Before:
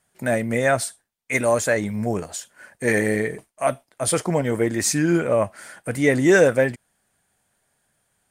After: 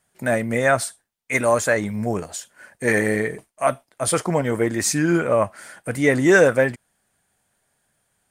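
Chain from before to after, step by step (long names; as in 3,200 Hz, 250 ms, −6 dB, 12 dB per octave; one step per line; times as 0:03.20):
dynamic equaliser 1,200 Hz, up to +5 dB, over −34 dBFS, Q 1.5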